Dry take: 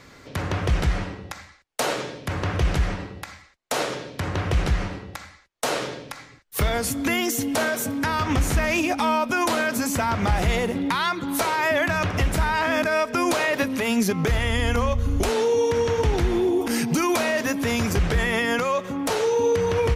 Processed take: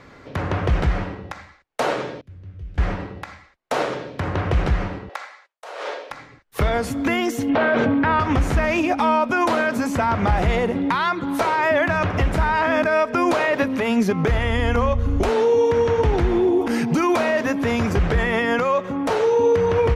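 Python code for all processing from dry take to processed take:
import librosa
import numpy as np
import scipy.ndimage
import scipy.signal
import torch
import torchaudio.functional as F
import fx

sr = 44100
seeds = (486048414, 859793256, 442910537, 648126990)

y = fx.chain(x, sr, fx.tone_stack(knobs='10-0-1'),
    fx.comb_fb(f0_hz=94.0, decay_s=0.25, harmonics='all', damping=0.0, mix_pct=70), at=(2.21, 2.78))
y = fx.chain(y, sr, fx.highpass(hz=500.0, slope=24),
    fx.gate_hold(open_db=-48.0, close_db=-52.0, hold_ms=71.0, range_db=-21, attack_ms=1.4, release_ms=100.0),
    fx.over_compress(threshold_db=-34.0, ratio=-1.0), at=(5.09, 6.11))
y = fx.chain(y, sr, fx.cheby2_lowpass(hz=12000.0, order=4, stop_db=70),
    fx.env_flatten(amount_pct=100), at=(7.49, 8.2))
y = fx.lowpass(y, sr, hz=1100.0, slope=6)
y = fx.low_shelf(y, sr, hz=490.0, db=-5.5)
y = y * 10.0 ** (7.5 / 20.0)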